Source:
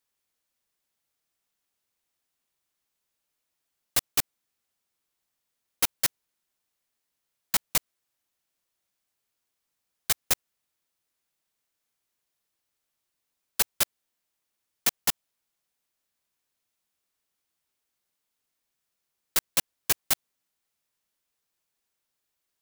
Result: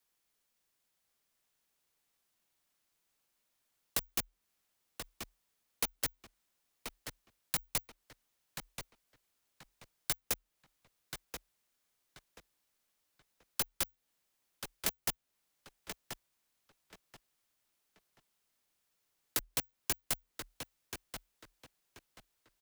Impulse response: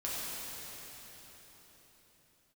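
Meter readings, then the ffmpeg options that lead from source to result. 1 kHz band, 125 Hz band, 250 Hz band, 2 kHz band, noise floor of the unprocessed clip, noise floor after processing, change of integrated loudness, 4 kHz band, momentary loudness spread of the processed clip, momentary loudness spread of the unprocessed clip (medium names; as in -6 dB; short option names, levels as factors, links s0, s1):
-8.0 dB, -3.5 dB, -4.0 dB, -8.0 dB, -82 dBFS, -82 dBFS, -12.0 dB, -9.0 dB, 15 LU, 3 LU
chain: -filter_complex "[0:a]acrossover=split=520|2300[s0][s1][s2];[s0]acompressor=threshold=0.00631:ratio=4[s3];[s1]acompressor=threshold=0.00501:ratio=4[s4];[s2]acompressor=threshold=0.0178:ratio=4[s5];[s3][s4][s5]amix=inputs=3:normalize=0,afreqshift=-40,asplit=2[s6][s7];[s7]adelay=1032,lowpass=f=4600:p=1,volume=0.501,asplit=2[s8][s9];[s9]adelay=1032,lowpass=f=4600:p=1,volume=0.27,asplit=2[s10][s11];[s11]adelay=1032,lowpass=f=4600:p=1,volume=0.27[s12];[s6][s8][s10][s12]amix=inputs=4:normalize=0,volume=1.12"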